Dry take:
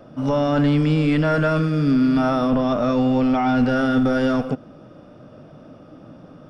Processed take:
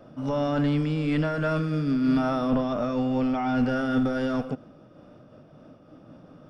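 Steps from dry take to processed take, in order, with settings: 2.75–4 notch 3900 Hz, Q 9.9; noise-modulated level, depth 55%; gain -3 dB

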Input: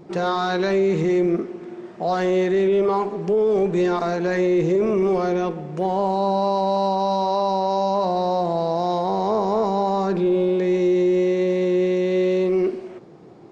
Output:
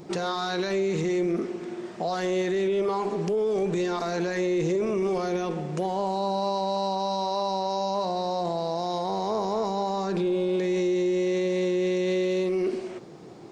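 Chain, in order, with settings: high shelf 3400 Hz +12 dB; limiter -19.5 dBFS, peak gain reduction 9.5 dB

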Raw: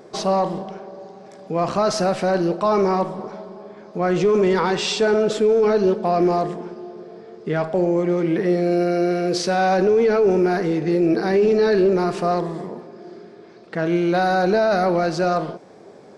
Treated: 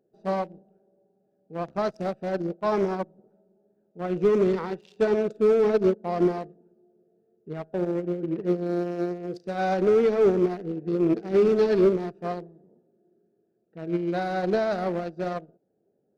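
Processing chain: Wiener smoothing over 41 samples; upward expander 2.5:1, over -32 dBFS

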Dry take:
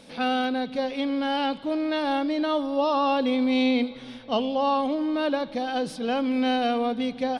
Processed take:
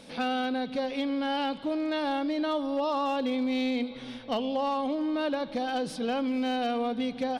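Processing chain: compressor 3:1, threshold -27 dBFS, peak gain reduction 6.5 dB; overloaded stage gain 22.5 dB

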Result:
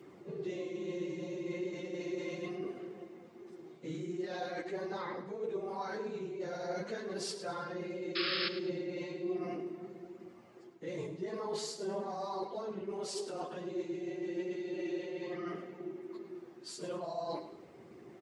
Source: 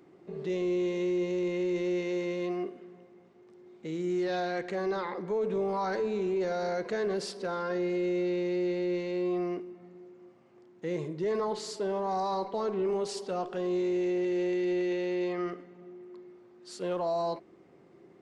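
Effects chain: phase scrambler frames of 50 ms; HPF 85 Hz; high shelf 5800 Hz +5.5 dB; reverse; compressor 10:1, threshold -40 dBFS, peak gain reduction 17.5 dB; reverse; flange 0.39 Hz, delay 0.3 ms, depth 6.9 ms, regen +61%; painted sound noise, 8.15–8.49, 1100–5300 Hz -43 dBFS; feedback echo 0.105 s, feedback 36%, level -12 dB; gain +8 dB

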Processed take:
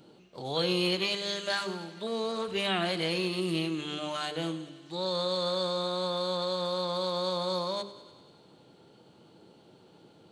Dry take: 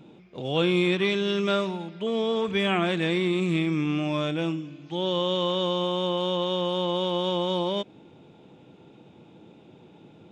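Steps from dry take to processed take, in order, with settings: high shelf 4300 Hz +10.5 dB; notches 50/100/150/200/250/300/350/400/450/500 Hz; formant shift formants +3 st; on a send: thinning echo 98 ms, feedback 69%, high-pass 370 Hz, level -15.5 dB; on the sum: gain -5.5 dB

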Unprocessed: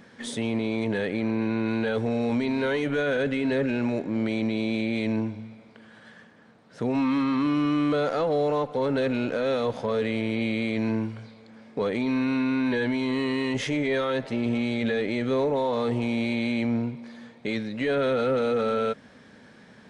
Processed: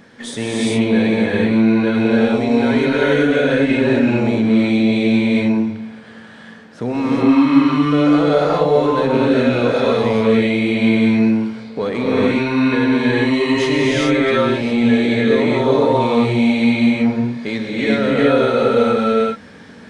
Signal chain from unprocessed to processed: non-linear reverb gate 0.44 s rising, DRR -6 dB; in parallel at -3 dB: vocal rider within 3 dB; on the sum: gain -1 dB

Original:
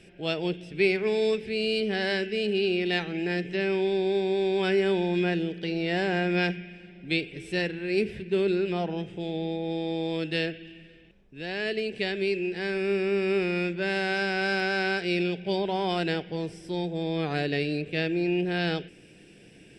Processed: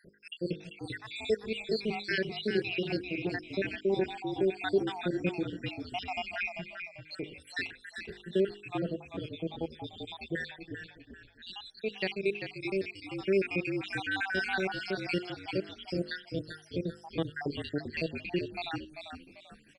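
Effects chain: random spectral dropouts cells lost 79%; de-hum 51.27 Hz, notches 10; on a send: frequency-shifting echo 0.392 s, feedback 33%, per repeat -48 Hz, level -7.5 dB

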